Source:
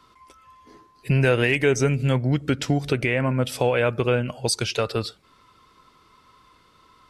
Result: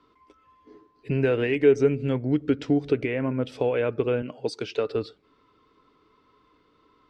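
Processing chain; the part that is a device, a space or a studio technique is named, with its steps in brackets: inside a cardboard box (LPF 4000 Hz 12 dB/oct; small resonant body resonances 300/420 Hz, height 12 dB, ringing for 45 ms); 4.22–4.88 HPF 150 Hz; gain -8.5 dB

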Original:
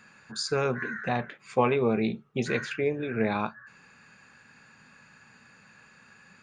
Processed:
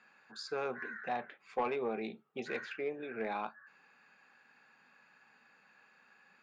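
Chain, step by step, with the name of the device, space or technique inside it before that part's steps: intercom (BPF 310–4300 Hz; bell 780 Hz +6 dB 0.26 oct; soft clip -15.5 dBFS, distortion -18 dB); gain -8.5 dB

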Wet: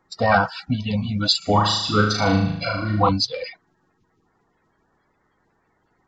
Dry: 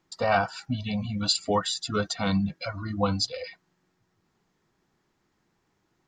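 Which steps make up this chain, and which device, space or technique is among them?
clip after many re-uploads (LPF 5900 Hz 24 dB/oct; bin magnitudes rounded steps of 30 dB); 1.38–3.09 flutter echo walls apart 6.5 m, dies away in 0.71 s; gain +7 dB

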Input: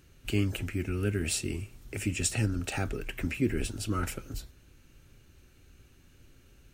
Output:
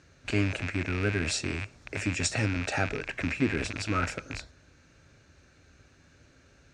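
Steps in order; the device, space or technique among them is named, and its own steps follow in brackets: car door speaker with a rattle (rattling part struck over -40 dBFS, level -26 dBFS; speaker cabinet 87–6700 Hz, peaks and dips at 120 Hz -6 dB, 210 Hz -6 dB, 360 Hz -6 dB, 620 Hz +5 dB, 1600 Hz +4 dB, 3000 Hz -8 dB); gain +4.5 dB

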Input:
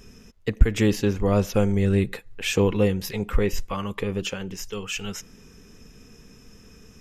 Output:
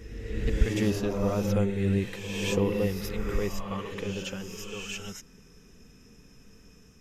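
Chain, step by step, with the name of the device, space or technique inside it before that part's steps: reverse reverb (reverse; reverb RT60 1.6 s, pre-delay 46 ms, DRR 1.5 dB; reverse); gain -7.5 dB

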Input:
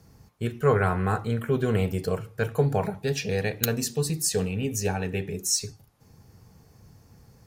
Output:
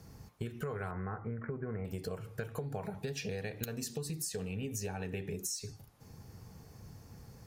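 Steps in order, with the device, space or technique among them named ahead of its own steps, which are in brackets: serial compression, peaks first (compressor, threshold -32 dBFS, peak gain reduction 15 dB; compressor 2.5:1, threshold -38 dBFS, peak gain reduction 7 dB); 0.91–1.85 Chebyshev low-pass 2100 Hz, order 5; gain +1 dB

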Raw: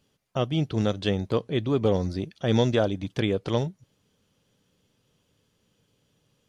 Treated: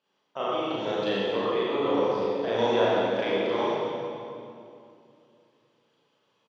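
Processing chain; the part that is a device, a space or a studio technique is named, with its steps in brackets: station announcement (BPF 440–3700 Hz; bell 1000 Hz +6 dB 0.43 oct; loudspeakers at several distances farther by 12 m 0 dB, 94 m -10 dB; reverb RT60 2.5 s, pre-delay 40 ms, DRR -6 dB); 0.76–1.46 notch 1200 Hz, Q 6.8; gain -6.5 dB

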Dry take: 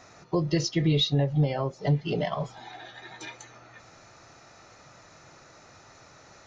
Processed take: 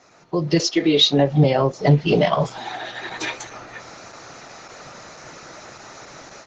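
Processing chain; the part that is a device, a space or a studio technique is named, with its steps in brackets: 0.58–1.43 HPF 360 Hz -> 130 Hz 24 dB/oct; video call (HPF 150 Hz 12 dB/oct; AGC gain up to 14 dB; Opus 12 kbps 48000 Hz)

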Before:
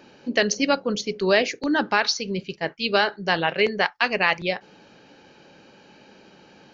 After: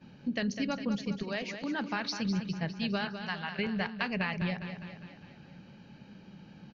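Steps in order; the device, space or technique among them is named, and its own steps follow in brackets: jukebox (LPF 5200 Hz 12 dB/oct; resonant low shelf 260 Hz +12.5 dB, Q 1.5; compressor, threshold -21 dBFS, peak gain reduction 9 dB); 1.22–1.95 HPF 440 Hz -> 210 Hz 12 dB/oct; 3.07–3.59 resonant low shelf 690 Hz -11 dB, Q 1.5; feedback echo 0.203 s, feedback 56%, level -9 dB; gate -52 dBFS, range -12 dB; gain -8 dB

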